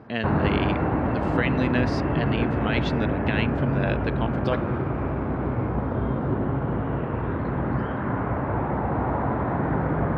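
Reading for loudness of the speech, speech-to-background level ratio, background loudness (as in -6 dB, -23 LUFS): -29.5 LUFS, -3.5 dB, -26.0 LUFS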